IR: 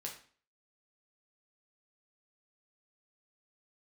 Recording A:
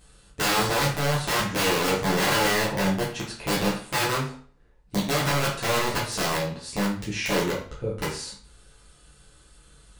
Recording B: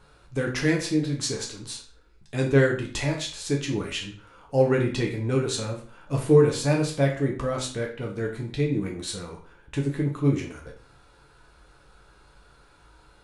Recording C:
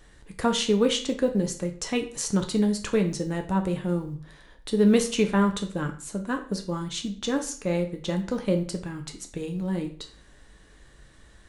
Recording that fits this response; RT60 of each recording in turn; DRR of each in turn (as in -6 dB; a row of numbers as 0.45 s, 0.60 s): B; 0.45 s, 0.45 s, 0.45 s; -7.0 dB, -0.5 dB, 4.5 dB